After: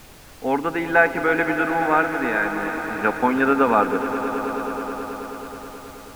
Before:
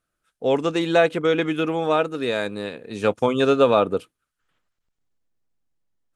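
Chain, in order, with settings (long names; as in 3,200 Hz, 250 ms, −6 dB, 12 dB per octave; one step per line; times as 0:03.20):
loudspeaker in its box 210–2,300 Hz, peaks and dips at 250 Hz +6 dB, 370 Hz −5 dB, 570 Hz −9 dB, 840 Hz +8 dB, 1,500 Hz +10 dB, 2,100 Hz +6 dB
background noise pink −45 dBFS
echo that builds up and dies away 107 ms, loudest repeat 5, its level −14.5 dB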